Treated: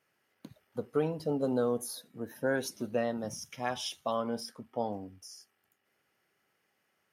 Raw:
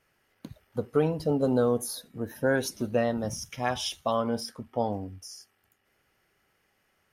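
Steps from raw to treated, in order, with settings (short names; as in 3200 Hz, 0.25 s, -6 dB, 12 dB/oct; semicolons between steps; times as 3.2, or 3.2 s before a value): HPF 140 Hz 12 dB/oct; gain -5 dB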